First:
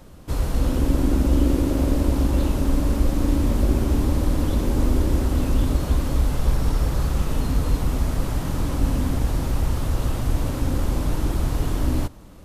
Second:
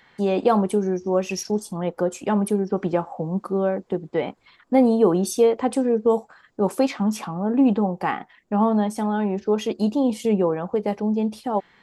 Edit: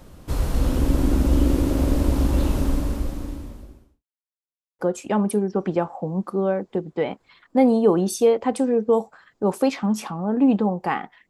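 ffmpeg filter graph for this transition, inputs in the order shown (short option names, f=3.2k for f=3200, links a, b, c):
-filter_complex "[0:a]apad=whole_dur=11.29,atrim=end=11.29,asplit=2[a][b];[a]atrim=end=4.04,asetpts=PTS-STARTPTS,afade=t=out:st=2.59:d=1.45:c=qua[c];[b]atrim=start=4.04:end=4.79,asetpts=PTS-STARTPTS,volume=0[d];[1:a]atrim=start=1.96:end=8.46,asetpts=PTS-STARTPTS,afade=t=in:d=0.004:c=hsin[e];[c][d][e]concat=n=3:v=0:a=1"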